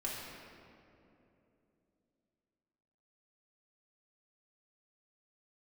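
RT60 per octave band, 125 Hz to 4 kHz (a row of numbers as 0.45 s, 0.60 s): 3.6 s, 3.8 s, 3.4 s, 2.5 s, 2.1 s, 1.5 s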